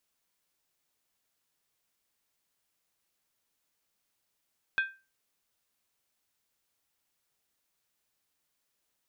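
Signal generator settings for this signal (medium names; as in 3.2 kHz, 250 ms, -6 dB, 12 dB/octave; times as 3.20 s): skin hit, lowest mode 1.57 kHz, decay 0.30 s, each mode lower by 8 dB, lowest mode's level -21.5 dB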